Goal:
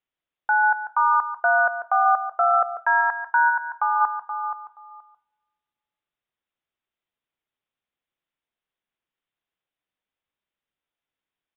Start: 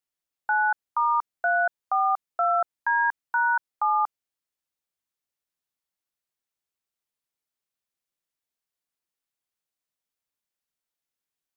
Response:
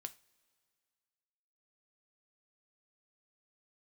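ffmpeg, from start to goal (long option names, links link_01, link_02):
-filter_complex "[0:a]aecho=1:1:476|952:0.316|0.0474,asplit=2[link_01][link_02];[1:a]atrim=start_sample=2205,adelay=143[link_03];[link_02][link_03]afir=irnorm=-1:irlink=0,volume=-6dB[link_04];[link_01][link_04]amix=inputs=2:normalize=0,asplit=3[link_05][link_06][link_07];[link_05]afade=type=out:start_time=3.49:duration=0.02[link_08];[link_06]acompressor=threshold=-22dB:ratio=6,afade=type=in:start_time=3.49:duration=0.02,afade=type=out:start_time=4:duration=0.02[link_09];[link_07]afade=type=in:start_time=4:duration=0.02[link_10];[link_08][link_09][link_10]amix=inputs=3:normalize=0,aresample=8000,aresample=44100,volume=3.5dB"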